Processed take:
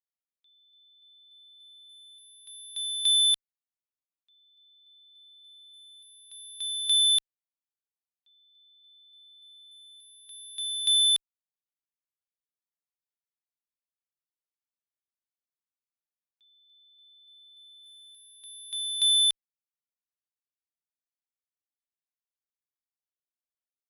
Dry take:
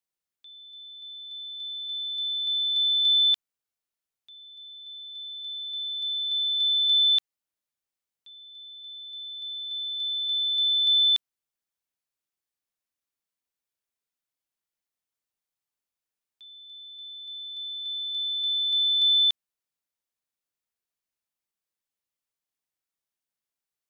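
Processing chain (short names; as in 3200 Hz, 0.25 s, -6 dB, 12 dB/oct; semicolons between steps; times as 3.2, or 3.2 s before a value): 17.83–18.36 zero-crossing step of -52.5 dBFS; added harmonics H 3 -8 dB, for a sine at -17 dBFS; gain -1.5 dB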